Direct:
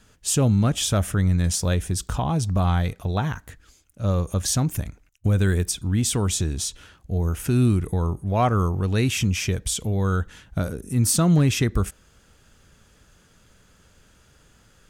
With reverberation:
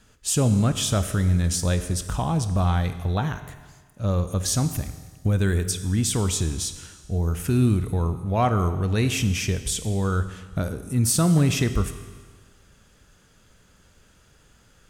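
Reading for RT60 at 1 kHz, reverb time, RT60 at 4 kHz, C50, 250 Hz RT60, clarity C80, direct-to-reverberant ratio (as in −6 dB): 1.5 s, 1.5 s, 1.5 s, 11.0 dB, 1.5 s, 12.0 dB, 10.0 dB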